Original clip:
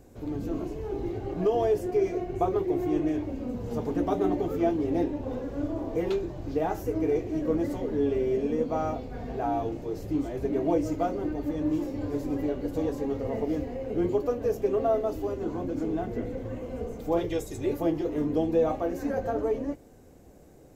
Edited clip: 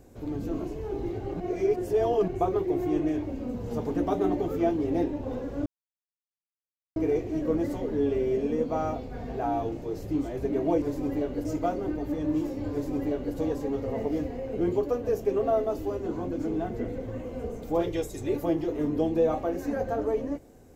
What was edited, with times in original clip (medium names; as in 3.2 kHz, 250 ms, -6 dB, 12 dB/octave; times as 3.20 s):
1.40–2.28 s: reverse
5.66–6.96 s: mute
12.09–12.72 s: copy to 10.82 s